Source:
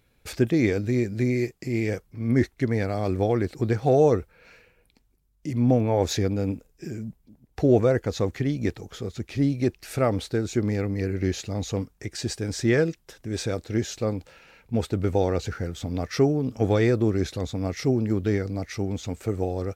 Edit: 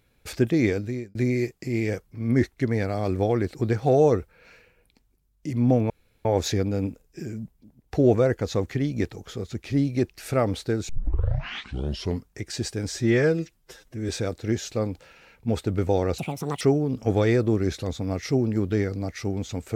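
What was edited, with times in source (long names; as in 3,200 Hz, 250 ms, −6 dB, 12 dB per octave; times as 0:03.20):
0:00.70–0:01.15: fade out
0:05.90: splice in room tone 0.35 s
0:10.54: tape start 1.37 s
0:12.57–0:13.35: time-stretch 1.5×
0:15.44–0:16.15: play speed 165%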